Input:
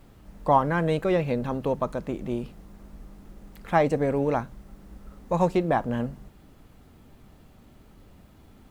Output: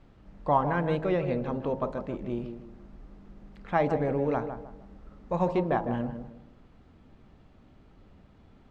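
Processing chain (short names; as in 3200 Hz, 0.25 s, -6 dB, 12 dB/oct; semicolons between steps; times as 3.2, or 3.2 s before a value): air absorption 140 m; de-hum 54.34 Hz, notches 19; tape echo 0.157 s, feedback 38%, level -7 dB, low-pass 1200 Hz; gain -3 dB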